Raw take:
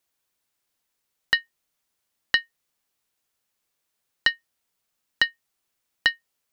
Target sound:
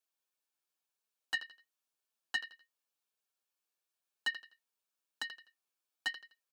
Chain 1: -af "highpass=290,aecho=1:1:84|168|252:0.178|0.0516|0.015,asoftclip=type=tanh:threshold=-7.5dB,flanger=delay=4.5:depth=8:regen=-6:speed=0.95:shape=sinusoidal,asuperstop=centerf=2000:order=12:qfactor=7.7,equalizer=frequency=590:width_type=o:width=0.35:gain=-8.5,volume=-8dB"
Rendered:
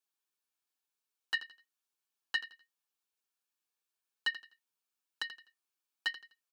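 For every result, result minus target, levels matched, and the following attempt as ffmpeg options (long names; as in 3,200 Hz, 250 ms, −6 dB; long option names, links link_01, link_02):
soft clipping: distortion −8 dB; 500 Hz band −2.5 dB
-af "highpass=290,aecho=1:1:84|168|252:0.178|0.0516|0.015,asoftclip=type=tanh:threshold=-13.5dB,flanger=delay=4.5:depth=8:regen=-6:speed=0.95:shape=sinusoidal,asuperstop=centerf=2000:order=12:qfactor=7.7,equalizer=frequency=590:width_type=o:width=0.35:gain=-8.5,volume=-8dB"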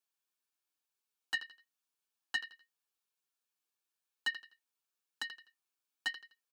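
500 Hz band −2.5 dB
-af "highpass=290,aecho=1:1:84|168|252:0.178|0.0516|0.015,asoftclip=type=tanh:threshold=-13.5dB,flanger=delay=4.5:depth=8:regen=-6:speed=0.95:shape=sinusoidal,asuperstop=centerf=2000:order=12:qfactor=7.7,volume=-8dB"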